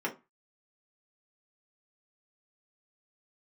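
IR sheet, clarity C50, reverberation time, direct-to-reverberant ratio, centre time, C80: 14.0 dB, 0.25 s, -2.5 dB, 12 ms, 22.5 dB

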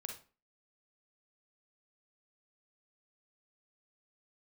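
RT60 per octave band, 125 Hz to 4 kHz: 0.35, 0.45, 0.40, 0.35, 0.35, 0.30 s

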